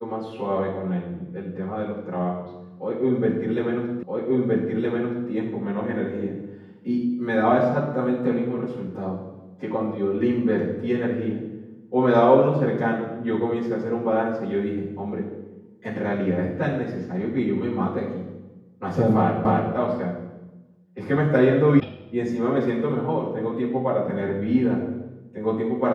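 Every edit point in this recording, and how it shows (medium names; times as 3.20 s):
4.03 s: repeat of the last 1.27 s
19.45 s: repeat of the last 0.29 s
21.80 s: sound stops dead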